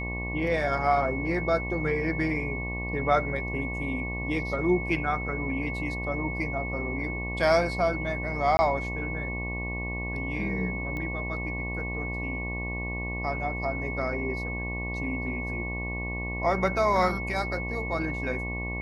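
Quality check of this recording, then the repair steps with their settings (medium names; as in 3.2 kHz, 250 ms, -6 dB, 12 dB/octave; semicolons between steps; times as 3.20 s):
buzz 60 Hz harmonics 19 -34 dBFS
whine 2.2 kHz -34 dBFS
8.57–8.59 s: dropout 20 ms
10.97 s: pop -23 dBFS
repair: de-click; de-hum 60 Hz, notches 19; band-stop 2.2 kHz, Q 30; interpolate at 8.57 s, 20 ms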